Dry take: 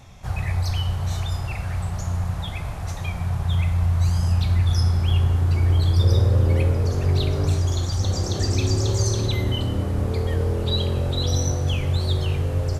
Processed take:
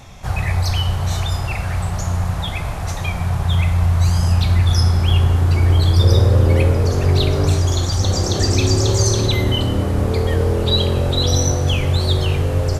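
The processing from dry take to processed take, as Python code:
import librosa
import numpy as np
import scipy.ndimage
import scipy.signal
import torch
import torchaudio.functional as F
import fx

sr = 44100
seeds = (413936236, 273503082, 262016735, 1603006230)

y = fx.peak_eq(x, sr, hz=93.0, db=-3.5, octaves=2.3)
y = y * 10.0 ** (8.0 / 20.0)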